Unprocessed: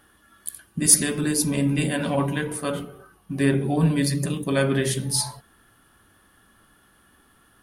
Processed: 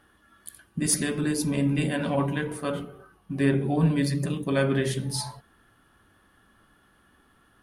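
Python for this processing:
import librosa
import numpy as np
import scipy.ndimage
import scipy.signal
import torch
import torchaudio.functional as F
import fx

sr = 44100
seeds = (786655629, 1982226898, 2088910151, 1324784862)

y = fx.high_shelf(x, sr, hz=5700.0, db=-10.0)
y = y * librosa.db_to_amplitude(-2.0)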